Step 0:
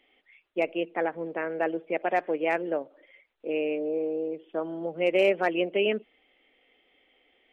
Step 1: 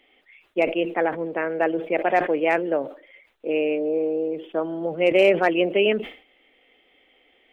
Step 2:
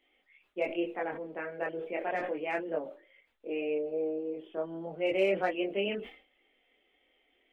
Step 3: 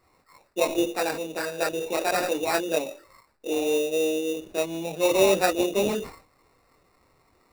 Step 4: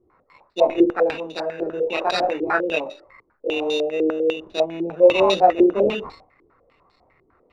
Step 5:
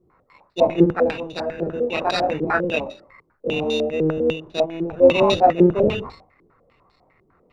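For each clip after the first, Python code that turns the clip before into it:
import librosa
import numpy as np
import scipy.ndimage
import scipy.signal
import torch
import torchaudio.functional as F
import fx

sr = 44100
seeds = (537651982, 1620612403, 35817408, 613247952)

y1 = fx.sustainer(x, sr, db_per_s=130.0)
y1 = y1 * librosa.db_to_amplitude(5.5)
y2 = fx.chorus_voices(y1, sr, voices=4, hz=0.32, base_ms=23, depth_ms=2.9, mix_pct=50)
y2 = y2 * librosa.db_to_amplitude(-8.0)
y3 = fx.sample_hold(y2, sr, seeds[0], rate_hz=3200.0, jitter_pct=0)
y3 = y3 * librosa.db_to_amplitude(8.0)
y4 = fx.filter_held_lowpass(y3, sr, hz=10.0, low_hz=370.0, high_hz=4100.0)
y5 = fx.octave_divider(y4, sr, octaves=1, level_db=-1.0)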